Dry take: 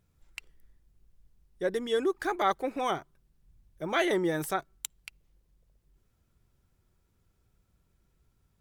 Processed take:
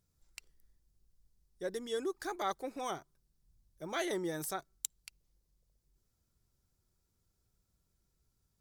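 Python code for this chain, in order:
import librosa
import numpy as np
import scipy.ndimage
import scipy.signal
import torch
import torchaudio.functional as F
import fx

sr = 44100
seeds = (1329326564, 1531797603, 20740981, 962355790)

y = fx.high_shelf_res(x, sr, hz=3700.0, db=7.0, q=1.5)
y = F.gain(torch.from_numpy(y), -8.5).numpy()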